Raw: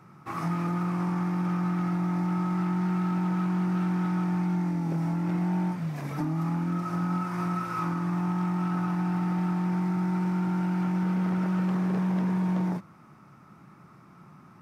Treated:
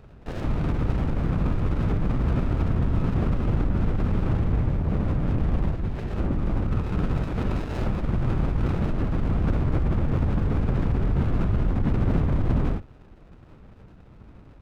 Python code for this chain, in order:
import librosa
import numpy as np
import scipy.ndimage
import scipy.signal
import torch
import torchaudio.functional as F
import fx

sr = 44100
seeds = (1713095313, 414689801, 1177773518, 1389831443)

y = fx.tracing_dist(x, sr, depth_ms=0.093)
y = fx.lpc_vocoder(y, sr, seeds[0], excitation='whisper', order=8)
y = fx.running_max(y, sr, window=33)
y = F.gain(torch.from_numpy(y), 5.5).numpy()